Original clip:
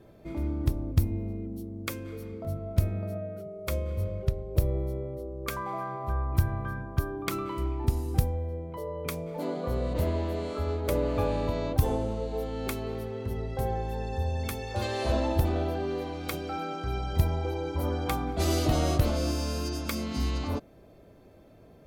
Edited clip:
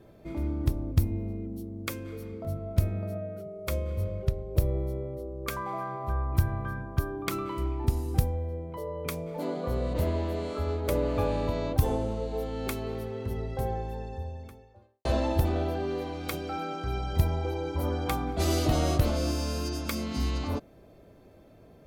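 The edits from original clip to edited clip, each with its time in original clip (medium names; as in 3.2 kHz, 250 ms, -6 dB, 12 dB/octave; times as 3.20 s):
13.33–15.05 s: studio fade out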